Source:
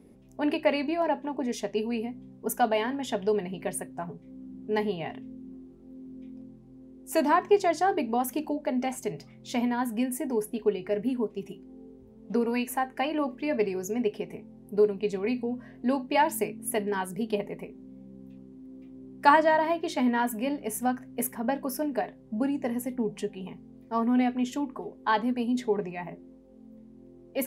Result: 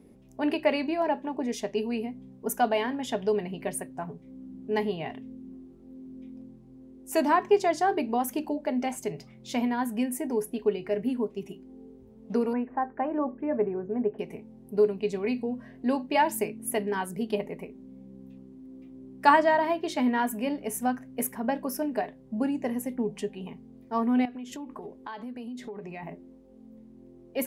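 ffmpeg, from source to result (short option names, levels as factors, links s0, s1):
-filter_complex "[0:a]asettb=1/sr,asplit=3[s0][s1][s2];[s0]atrim=end=12.534[s3];[s1]atrim=start=12.53:end=14.19,asetpts=PTS-STARTPTS,afade=t=in:d=0.004:c=qsin,afade=t=out:st=1.656:d=0.004:c=qsin,lowpass=f=1500:w=0.5412,lowpass=f=1500:w=1.3066[s4];[s2]atrim=start=14.186[s5];[s3][s4]acrossfade=d=0.004:c1=hsin:c2=qsin[s6];[s6][s5]acrossfade=d=0.004:c1=qsin:c2=hsin,asettb=1/sr,asplit=3[s7][s8][s9];[s7]atrim=end=24.254[s10];[s8]atrim=start=24.25:end=26.03,asetpts=PTS-STARTPTS,afade=t=in:d=0.004:c=qsin,afade=t=out:st=1.776:d=0.004:c=qsin,acompressor=threshold=0.0178:ratio=10:attack=3.2:release=140:knee=1:detection=peak[s11];[s9]atrim=start=26.026[s12];[s10][s11]acrossfade=d=0.004:c1=hsin:c2=qsin[s13];[s13][s12]acrossfade=d=0.004:c1=qsin:c2=hsin"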